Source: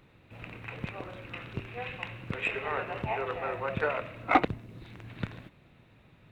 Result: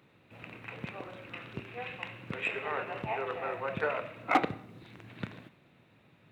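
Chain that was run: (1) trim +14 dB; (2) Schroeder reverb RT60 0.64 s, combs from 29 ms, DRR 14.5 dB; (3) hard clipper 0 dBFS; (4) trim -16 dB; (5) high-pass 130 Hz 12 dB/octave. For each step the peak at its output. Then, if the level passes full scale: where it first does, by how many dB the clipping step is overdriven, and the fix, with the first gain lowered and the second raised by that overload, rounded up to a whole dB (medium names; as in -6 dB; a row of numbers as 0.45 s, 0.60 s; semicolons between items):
+6.0 dBFS, +6.0 dBFS, 0.0 dBFS, -16.0 dBFS, -13.0 dBFS; step 1, 6.0 dB; step 1 +8 dB, step 4 -10 dB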